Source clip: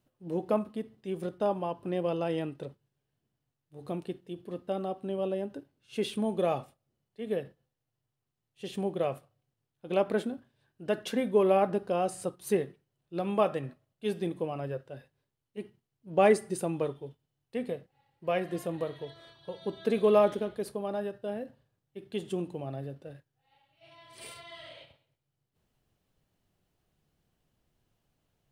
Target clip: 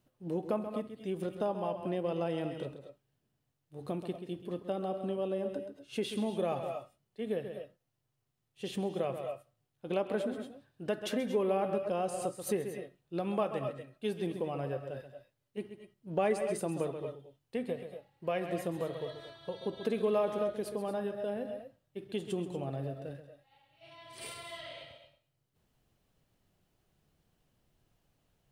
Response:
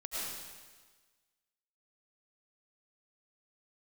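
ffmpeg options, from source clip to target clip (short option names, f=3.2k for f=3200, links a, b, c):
-filter_complex "[0:a]asplit=2[a][b];[1:a]atrim=start_sample=2205,afade=t=out:st=0.16:d=0.01,atrim=end_sample=7497,adelay=132[c];[b][c]afir=irnorm=-1:irlink=0,volume=-6dB[d];[a][d]amix=inputs=2:normalize=0,acompressor=threshold=-35dB:ratio=2,volume=1.5dB"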